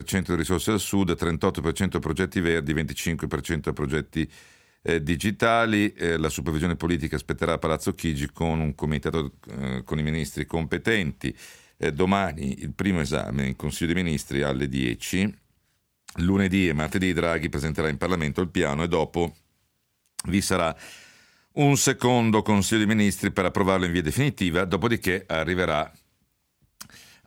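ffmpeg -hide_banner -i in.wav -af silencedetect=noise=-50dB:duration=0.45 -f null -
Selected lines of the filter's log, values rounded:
silence_start: 15.42
silence_end: 16.08 | silence_duration: 0.66
silence_start: 19.38
silence_end: 20.06 | silence_duration: 0.68
silence_start: 26.00
silence_end: 26.80 | silence_duration: 0.80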